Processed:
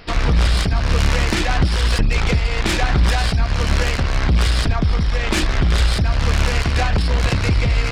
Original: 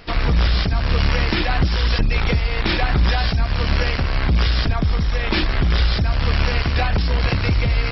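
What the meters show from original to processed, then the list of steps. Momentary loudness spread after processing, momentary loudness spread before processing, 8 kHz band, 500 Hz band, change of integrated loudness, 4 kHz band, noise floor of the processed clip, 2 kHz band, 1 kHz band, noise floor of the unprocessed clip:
2 LU, 2 LU, no reading, +1.5 dB, +1.0 dB, +0.5 dB, -21 dBFS, +1.0 dB, +1.0 dB, -22 dBFS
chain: self-modulated delay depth 0.13 ms; trim +1.5 dB

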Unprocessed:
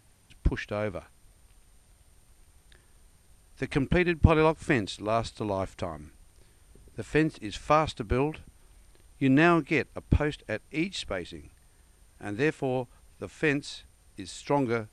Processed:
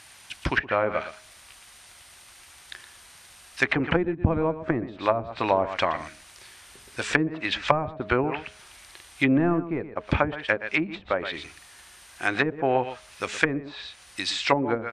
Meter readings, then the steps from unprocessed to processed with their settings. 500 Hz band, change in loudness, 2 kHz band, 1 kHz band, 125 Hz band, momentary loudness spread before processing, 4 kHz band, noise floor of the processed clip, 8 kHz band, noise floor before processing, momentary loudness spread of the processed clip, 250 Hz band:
+2.5 dB, +2.0 dB, +5.5 dB, +4.0 dB, -1.5 dB, 21 LU, +6.5 dB, -51 dBFS, +4.5 dB, -61 dBFS, 16 LU, +1.0 dB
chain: bass shelf 330 Hz +6 dB; band-stop 450 Hz, Q 12; de-hum 209 Hz, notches 3; in parallel at -11 dB: hard clipper -9 dBFS, distortion -14 dB; on the sum: high-pass 55 Hz; tilt shelf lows -10 dB, about 760 Hz; overdrive pedal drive 11 dB, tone 3.1 kHz, clips at -2 dBFS; delay 118 ms -13 dB; low-pass that closes with the level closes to 360 Hz, closed at -17.5 dBFS; trim +4.5 dB

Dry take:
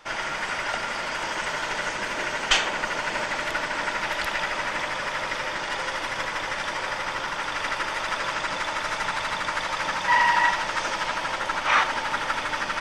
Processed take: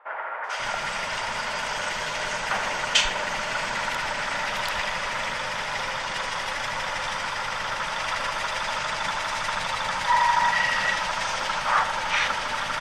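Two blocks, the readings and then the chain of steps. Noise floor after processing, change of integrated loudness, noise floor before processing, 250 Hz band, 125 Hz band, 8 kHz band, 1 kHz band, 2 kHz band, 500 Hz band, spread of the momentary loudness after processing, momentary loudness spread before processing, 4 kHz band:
-31 dBFS, 0.0 dB, -31 dBFS, -3.5 dB, +1.5 dB, +2.0 dB, +0.5 dB, -0.5 dB, -1.0 dB, 7 LU, 7 LU, +1.5 dB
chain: peaking EQ 320 Hz -10 dB 0.47 oct; three bands offset in time mids, highs, lows 440/540 ms, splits 420/1700 Hz; trim +2 dB

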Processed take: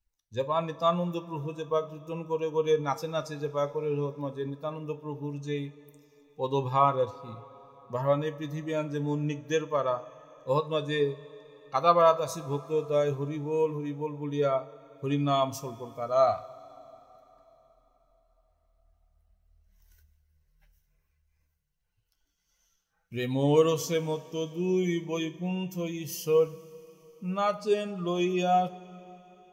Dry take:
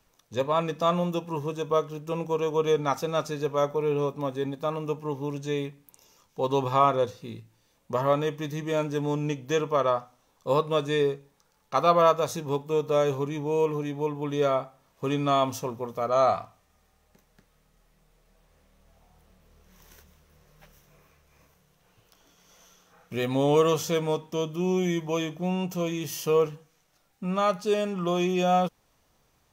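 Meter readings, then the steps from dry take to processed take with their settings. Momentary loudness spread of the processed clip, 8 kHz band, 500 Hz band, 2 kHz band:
13 LU, -3.0 dB, -2.5 dB, -3.5 dB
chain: expander on every frequency bin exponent 1.5; two-slope reverb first 0.3 s, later 4.2 s, from -18 dB, DRR 10.5 dB

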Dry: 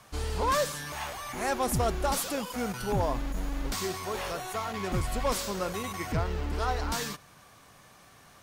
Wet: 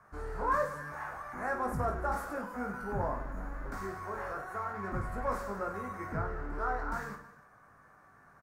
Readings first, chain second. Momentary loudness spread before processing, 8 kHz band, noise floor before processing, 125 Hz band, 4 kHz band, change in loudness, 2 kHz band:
7 LU, -20.5 dB, -56 dBFS, -7.0 dB, -24.0 dB, -5.0 dB, -2.0 dB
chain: resonant high shelf 2.2 kHz -13 dB, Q 3; on a send: reverse bouncing-ball echo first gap 20 ms, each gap 1.6×, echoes 5; on the sum: trim -8.5 dB

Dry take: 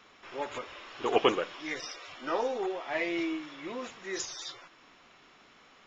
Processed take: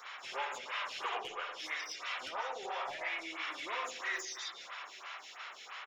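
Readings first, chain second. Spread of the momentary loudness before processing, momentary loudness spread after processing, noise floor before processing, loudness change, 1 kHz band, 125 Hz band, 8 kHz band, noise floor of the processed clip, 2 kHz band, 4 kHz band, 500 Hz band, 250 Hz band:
14 LU, 8 LU, -59 dBFS, -6.0 dB, -3.5 dB, under -15 dB, no reading, -52 dBFS, 0.0 dB, -2.0 dB, -14.0 dB, -20.5 dB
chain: high-pass 800 Hz 12 dB/octave; treble shelf 5.1 kHz +8.5 dB; compression 16:1, threshold -45 dBFS, peak gain reduction 23.5 dB; overdrive pedal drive 10 dB, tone 5.5 kHz, clips at -33 dBFS; hard clipper -36.5 dBFS, distortion -35 dB; delay 851 ms -21.5 dB; spring tank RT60 1.1 s, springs 52/57 ms, chirp 75 ms, DRR 1.5 dB; lamp-driven phase shifter 3 Hz; trim +7.5 dB

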